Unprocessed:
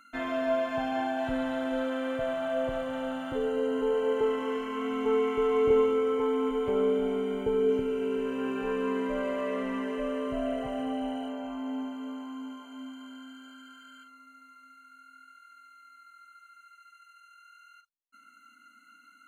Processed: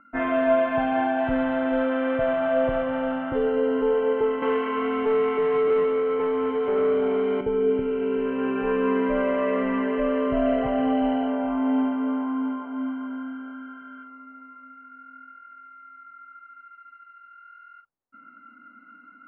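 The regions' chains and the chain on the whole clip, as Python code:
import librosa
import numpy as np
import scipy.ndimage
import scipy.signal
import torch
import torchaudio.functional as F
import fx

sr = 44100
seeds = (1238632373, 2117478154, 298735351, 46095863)

y = fx.chain(x, sr, fx.highpass(hz=280.0, slope=12),
    fx.leveller(passes=2), at=(4.42, 7.41))
y = fx.env_lowpass(y, sr, base_hz=1000.0, full_db=-23.0)
y = scipy.signal.sosfilt(scipy.signal.butter(4, 2700.0, 'lowpass', fs=sr, output='sos'), y)
y = fx.rider(y, sr, range_db=10, speed_s=2.0)
y = y * librosa.db_to_amplitude(3.5)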